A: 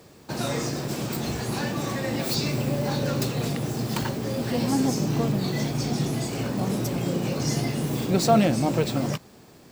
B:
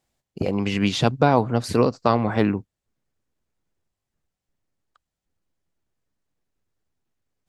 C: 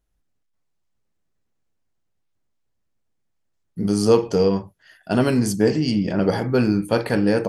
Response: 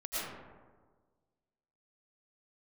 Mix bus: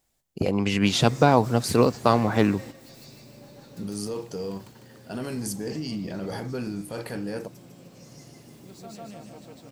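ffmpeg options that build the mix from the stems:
-filter_complex "[0:a]highshelf=f=12k:g=-10,adelay=550,volume=-13dB,asplit=2[a][b];[b]volume=-11.5dB[c];[1:a]volume=-0.5dB,asplit=2[d][e];[2:a]dynaudnorm=f=560:g=3:m=11.5dB,alimiter=limit=-11.5dB:level=0:latency=1:release=15,volume=-12.5dB[f];[e]apad=whole_len=452853[g];[a][g]sidechaingate=range=-14dB:threshold=-41dB:ratio=16:detection=peak[h];[c]aecho=0:1:151|302|453|604|755|906|1057:1|0.5|0.25|0.125|0.0625|0.0312|0.0156[i];[h][d][f][i]amix=inputs=4:normalize=0,highshelf=f=7.4k:g=11"

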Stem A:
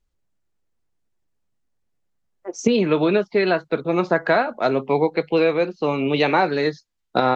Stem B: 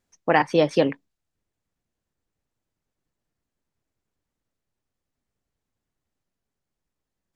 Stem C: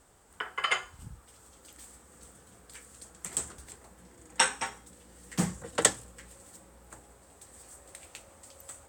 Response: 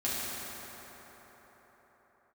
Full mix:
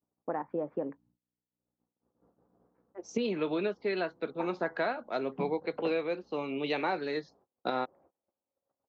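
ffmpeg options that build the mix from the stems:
-filter_complex "[0:a]adelay=500,volume=-8.5dB[a];[1:a]lowpass=f=1.3k:w=0.5412,lowpass=f=1.3k:w=1.3066,acompressor=threshold=-18dB:ratio=6,aeval=exprs='val(0)+0.00224*(sin(2*PI*60*n/s)+sin(2*PI*2*60*n/s)/2+sin(2*PI*3*60*n/s)/3+sin(2*PI*4*60*n/s)/4+sin(2*PI*5*60*n/s)/5)':c=same,volume=-6.5dB,asplit=2[b][c];[2:a]lowpass=f=1k:w=0.5412,lowpass=f=1k:w=1.3066,volume=-3dB[d];[c]apad=whole_len=391929[e];[d][e]sidechaincompress=threshold=-50dB:ratio=12:attack=24:release=836[f];[a][b][f]amix=inputs=3:normalize=0,equalizer=f=1k:w=0.3:g=-5,agate=range=-27dB:threshold=-58dB:ratio=16:detection=peak,highpass=240,lowpass=4.9k"

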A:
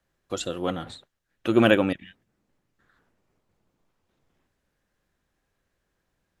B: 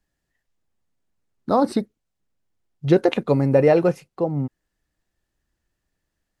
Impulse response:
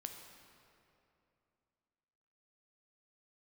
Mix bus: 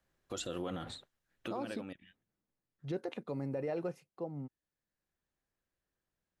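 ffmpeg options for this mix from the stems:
-filter_complex "[0:a]alimiter=limit=-10.5dB:level=0:latency=1:release=339,volume=-4dB,afade=t=out:st=2.1:d=0.44:silence=0.298538[a];[1:a]highpass=120,volume=-17dB,asplit=2[b][c];[c]apad=whole_len=282272[d];[a][d]sidechaincompress=threshold=-44dB:ratio=16:attack=9.9:release=1060[e];[e][b]amix=inputs=2:normalize=0,alimiter=level_in=4.5dB:limit=-24dB:level=0:latency=1:release=58,volume=-4.5dB"

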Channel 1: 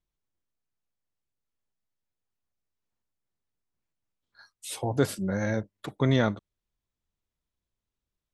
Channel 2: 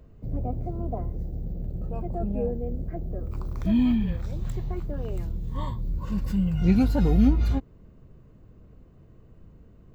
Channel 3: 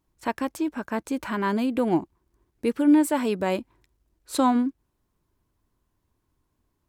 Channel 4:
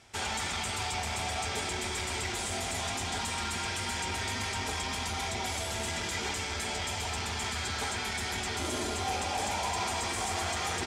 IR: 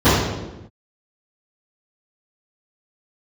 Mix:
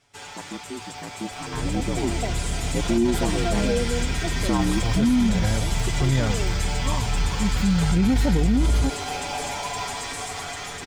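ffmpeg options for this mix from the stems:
-filter_complex "[0:a]asubboost=boost=4:cutoff=160,volume=-11dB[a];[1:a]adelay=1300,volume=-3.5dB[b];[2:a]equalizer=f=280:t=o:w=0.38:g=7.5,aeval=exprs='val(0)*sin(2*PI*59*n/s)':c=same,adelay=100,volume=-10.5dB[c];[3:a]aecho=1:1:7:0.96,acrusher=bits=7:mode=log:mix=0:aa=0.000001,volume=-8.5dB[d];[a][b][c][d]amix=inputs=4:normalize=0,dynaudnorm=f=780:g=5:m=10dB,alimiter=limit=-12.5dB:level=0:latency=1:release=23"

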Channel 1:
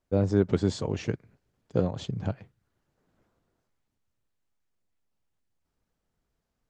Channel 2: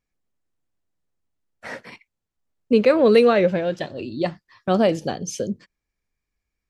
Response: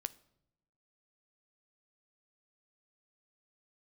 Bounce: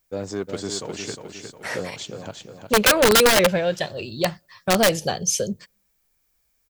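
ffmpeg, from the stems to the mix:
-filter_complex "[0:a]aemphasis=mode=production:type=riaa,asoftclip=type=tanh:threshold=-19dB,volume=1.5dB,asplit=2[a][b];[b]volume=-6.5dB[c];[1:a]asoftclip=type=tanh:threshold=-6dB,crystalizer=i=2:c=0,equalizer=f=280:w=2.7:g=-15,volume=2.5dB,asplit=2[d][e];[e]volume=-22dB[f];[2:a]atrim=start_sample=2205[g];[f][g]afir=irnorm=-1:irlink=0[h];[c]aecho=0:1:358|716|1074|1432|1790|2148:1|0.46|0.212|0.0973|0.0448|0.0206[i];[a][d][h][i]amix=inputs=4:normalize=0,aeval=exprs='(mod(2.99*val(0)+1,2)-1)/2.99':c=same"

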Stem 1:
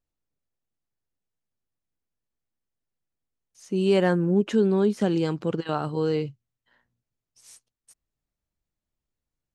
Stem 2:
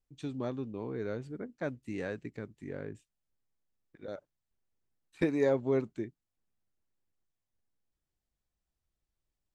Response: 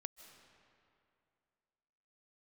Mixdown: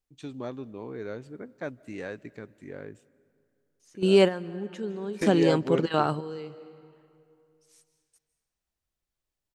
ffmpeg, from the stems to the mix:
-filter_complex "[0:a]adelay=250,volume=3dB,asplit=2[a][b];[b]volume=-10dB[c];[1:a]volume=0dB,asplit=3[d][e][f];[e]volume=-7.5dB[g];[f]apad=whole_len=431849[h];[a][h]sidechaingate=range=-33dB:threshold=-53dB:ratio=16:detection=peak[i];[2:a]atrim=start_sample=2205[j];[c][g]amix=inputs=2:normalize=0[k];[k][j]afir=irnorm=-1:irlink=0[l];[i][d][l]amix=inputs=3:normalize=0,lowshelf=f=260:g=-6"

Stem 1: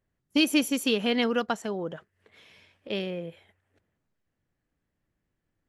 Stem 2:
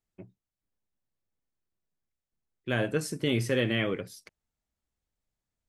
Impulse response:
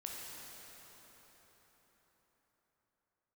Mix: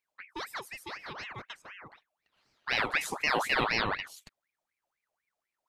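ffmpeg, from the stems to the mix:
-filter_complex "[0:a]volume=-14dB[a];[1:a]volume=1.5dB[b];[a][b]amix=inputs=2:normalize=0,aeval=exprs='val(0)*sin(2*PI*1500*n/s+1500*0.6/4*sin(2*PI*4*n/s))':c=same"

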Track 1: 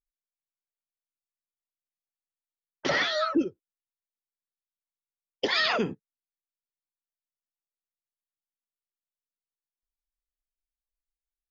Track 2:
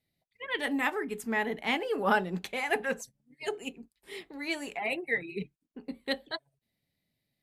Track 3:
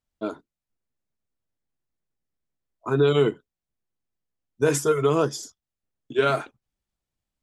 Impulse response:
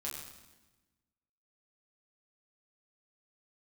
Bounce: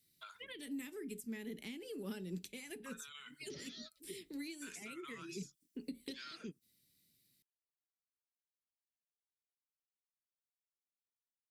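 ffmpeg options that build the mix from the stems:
-filter_complex "[0:a]adelay=650,volume=-8.5dB[a];[1:a]lowshelf=f=130:g=-6.5,bandreject=f=6.6k:w=14,volume=2dB,asplit=2[b][c];[2:a]highpass=f=1.5k:w=0.5412,highpass=f=1.5k:w=1.3066,acompressor=threshold=-50dB:ratio=2,volume=1dB[d];[c]apad=whole_len=536183[e];[a][e]sidechaingate=range=-30dB:threshold=-49dB:ratio=16:detection=peak[f];[f][b]amix=inputs=2:normalize=0,firequalizer=gain_entry='entry(370,0);entry(730,-19);entry(2400,-1);entry(6100,12)':delay=0.05:min_phase=1,acompressor=threshold=-39dB:ratio=4,volume=0dB[g];[d][g]amix=inputs=2:normalize=0,acrossover=split=330[h][i];[i]acompressor=threshold=-50dB:ratio=4[j];[h][j]amix=inputs=2:normalize=0"

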